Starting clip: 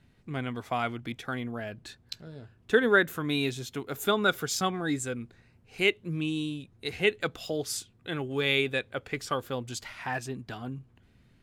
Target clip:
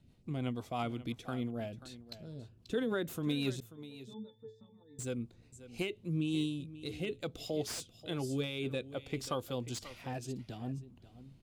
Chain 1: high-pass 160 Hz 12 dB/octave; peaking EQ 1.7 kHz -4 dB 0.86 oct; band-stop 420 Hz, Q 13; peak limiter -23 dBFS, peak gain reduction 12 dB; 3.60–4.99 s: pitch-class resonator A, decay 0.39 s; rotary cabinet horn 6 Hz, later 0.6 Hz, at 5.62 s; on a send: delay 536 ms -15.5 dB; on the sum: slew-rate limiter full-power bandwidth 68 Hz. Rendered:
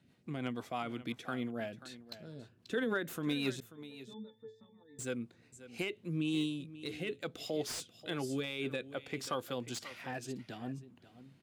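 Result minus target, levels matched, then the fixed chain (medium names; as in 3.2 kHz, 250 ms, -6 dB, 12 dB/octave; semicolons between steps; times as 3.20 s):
2 kHz band +4.5 dB; 125 Hz band -4.0 dB
peaking EQ 1.7 kHz -13 dB 0.86 oct; band-stop 420 Hz, Q 13; peak limiter -23 dBFS, peak gain reduction 9.5 dB; 3.60–4.99 s: pitch-class resonator A, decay 0.39 s; rotary cabinet horn 6 Hz, later 0.6 Hz, at 5.62 s; on a send: delay 536 ms -15.5 dB; on the sum: slew-rate limiter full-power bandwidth 68 Hz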